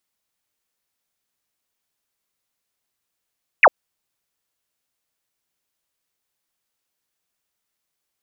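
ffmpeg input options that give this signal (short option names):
-f lavfi -i "aevalsrc='0.501*clip(t/0.002,0,1)*clip((0.05-t)/0.002,0,1)*sin(2*PI*2800*0.05/log(480/2800)*(exp(log(480/2800)*t/0.05)-1))':d=0.05:s=44100"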